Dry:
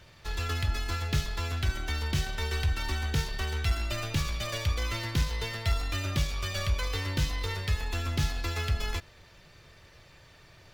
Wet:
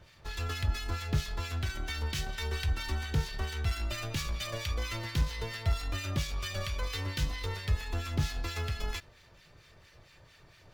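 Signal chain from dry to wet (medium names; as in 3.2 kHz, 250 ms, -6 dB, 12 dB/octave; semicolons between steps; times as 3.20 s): harmonic tremolo 4.4 Hz, depth 70%, crossover 1.3 kHz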